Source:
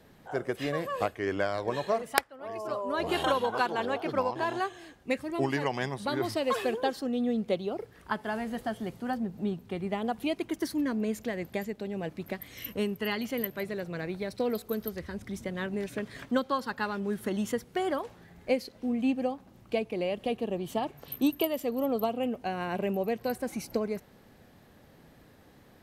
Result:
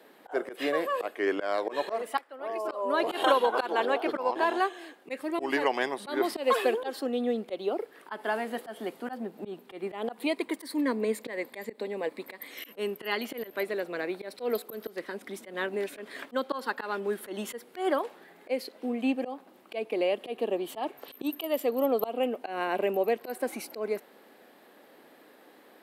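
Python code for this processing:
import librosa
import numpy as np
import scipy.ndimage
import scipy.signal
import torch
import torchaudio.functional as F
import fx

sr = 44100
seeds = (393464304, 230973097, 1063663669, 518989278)

y = fx.ripple_eq(x, sr, per_octave=0.97, db=7, at=(10.19, 12.5))
y = scipy.signal.sosfilt(scipy.signal.butter(4, 290.0, 'highpass', fs=sr, output='sos'), y)
y = fx.peak_eq(y, sr, hz=6100.0, db=-8.0, octaves=0.64)
y = fx.auto_swell(y, sr, attack_ms=118.0)
y = y * librosa.db_to_amplitude(4.5)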